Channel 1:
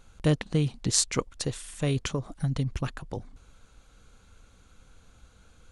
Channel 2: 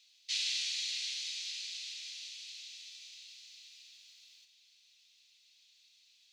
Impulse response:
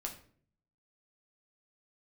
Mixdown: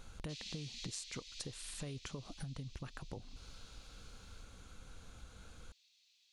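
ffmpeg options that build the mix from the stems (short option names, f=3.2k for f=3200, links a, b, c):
-filter_complex "[0:a]acompressor=threshold=-34dB:ratio=4,volume=1.5dB[a];[1:a]volume=-6dB[b];[a][b]amix=inputs=2:normalize=0,acompressor=threshold=-45dB:ratio=3"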